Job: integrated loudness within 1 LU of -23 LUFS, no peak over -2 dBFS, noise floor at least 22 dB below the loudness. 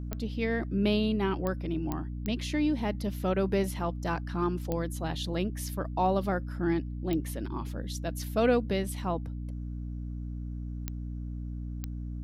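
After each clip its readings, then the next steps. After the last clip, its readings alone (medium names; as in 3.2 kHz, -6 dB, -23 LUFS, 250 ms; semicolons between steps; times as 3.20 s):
clicks found 8; hum 60 Hz; highest harmonic 300 Hz; hum level -34 dBFS; loudness -31.5 LUFS; peak level -14.0 dBFS; loudness target -23.0 LUFS
-> de-click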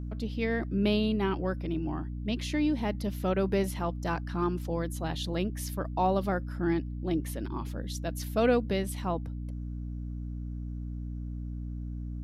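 clicks found 0; hum 60 Hz; highest harmonic 300 Hz; hum level -34 dBFS
-> de-hum 60 Hz, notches 5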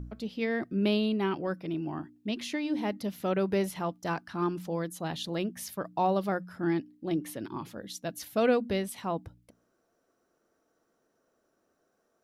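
hum not found; loudness -32.0 LUFS; peak level -14.0 dBFS; loudness target -23.0 LUFS
-> trim +9 dB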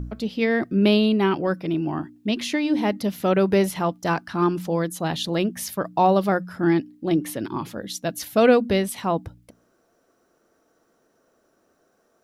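loudness -23.0 LUFS; peak level -5.0 dBFS; noise floor -66 dBFS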